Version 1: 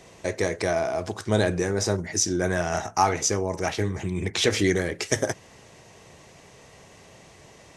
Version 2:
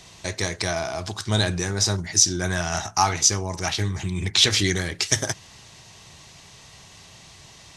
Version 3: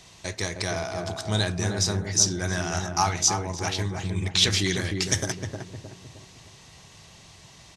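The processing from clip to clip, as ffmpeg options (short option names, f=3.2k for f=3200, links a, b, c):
-af "equalizer=f=250:t=o:w=1:g=-5,equalizer=f=500:t=o:w=1:g=-12,equalizer=f=2k:t=o:w=1:g=-4,equalizer=f=4k:t=o:w=1:g=7,volume=4.5dB"
-filter_complex "[0:a]asplit=2[a][b];[b]adelay=309,lowpass=f=820:p=1,volume=-3dB,asplit=2[c][d];[d]adelay=309,lowpass=f=820:p=1,volume=0.49,asplit=2[e][f];[f]adelay=309,lowpass=f=820:p=1,volume=0.49,asplit=2[g][h];[h]adelay=309,lowpass=f=820:p=1,volume=0.49,asplit=2[i][j];[j]adelay=309,lowpass=f=820:p=1,volume=0.49,asplit=2[k][l];[l]adelay=309,lowpass=f=820:p=1,volume=0.49[m];[a][c][e][g][i][k][m]amix=inputs=7:normalize=0,volume=-3.5dB"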